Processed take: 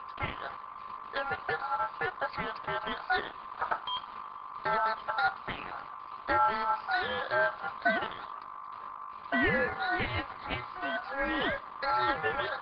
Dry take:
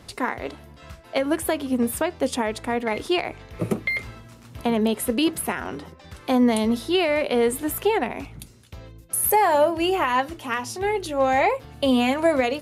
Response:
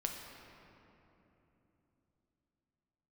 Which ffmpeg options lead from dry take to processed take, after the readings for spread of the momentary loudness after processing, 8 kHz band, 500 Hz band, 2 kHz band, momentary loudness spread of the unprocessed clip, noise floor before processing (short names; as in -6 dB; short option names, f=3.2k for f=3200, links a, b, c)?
15 LU, under -40 dB, -13.5 dB, -2.0 dB, 11 LU, -48 dBFS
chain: -filter_complex "[0:a]aeval=exprs='val(0)+0.02*(sin(2*PI*50*n/s)+sin(2*PI*2*50*n/s)/2+sin(2*PI*3*50*n/s)/3+sin(2*PI*4*50*n/s)/4+sin(2*PI*5*50*n/s)/5)':c=same,aphaser=in_gain=1:out_gain=1:delay=1:decay=0.33:speed=1.9:type=triangular,aresample=16000,acrusher=bits=5:mix=0:aa=0.5,aresample=44100,aresample=8000,aresample=44100,asplit=2[a][b];[1:a]atrim=start_sample=2205[c];[b][c]afir=irnorm=-1:irlink=0,volume=-18.5dB[d];[a][d]amix=inputs=2:normalize=0,aeval=exprs='val(0)*sin(2*PI*1100*n/s)':c=same,volume=-8dB" -ar 48000 -c:a libopus -b:a 12k